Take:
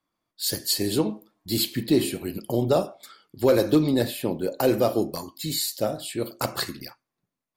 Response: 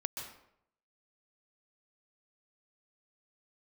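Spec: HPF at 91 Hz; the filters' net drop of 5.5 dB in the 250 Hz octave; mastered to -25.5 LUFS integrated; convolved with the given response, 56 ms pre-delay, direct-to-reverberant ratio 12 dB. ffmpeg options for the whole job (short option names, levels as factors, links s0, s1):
-filter_complex "[0:a]highpass=91,equalizer=f=250:t=o:g=-7.5,asplit=2[s0][s1];[1:a]atrim=start_sample=2205,adelay=56[s2];[s1][s2]afir=irnorm=-1:irlink=0,volume=0.224[s3];[s0][s3]amix=inputs=2:normalize=0,volume=1.19"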